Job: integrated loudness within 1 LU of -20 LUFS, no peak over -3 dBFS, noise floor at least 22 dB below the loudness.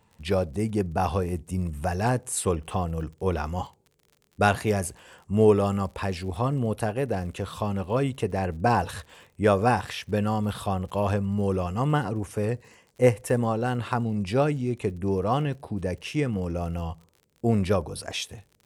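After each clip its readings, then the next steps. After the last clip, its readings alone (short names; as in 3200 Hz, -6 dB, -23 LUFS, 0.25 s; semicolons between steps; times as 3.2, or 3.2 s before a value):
ticks 47/s; loudness -27.0 LUFS; peak -5.5 dBFS; loudness target -20.0 LUFS
-> de-click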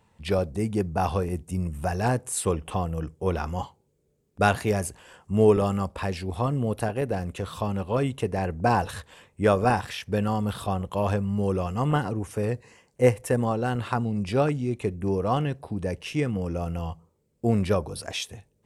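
ticks 0.054/s; loudness -27.0 LUFS; peak -5.5 dBFS; loudness target -20.0 LUFS
-> gain +7 dB; limiter -3 dBFS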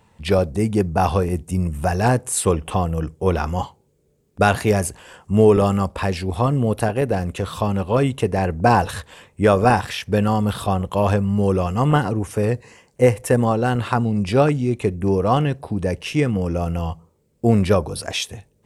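loudness -20.0 LUFS; peak -3.0 dBFS; noise floor -62 dBFS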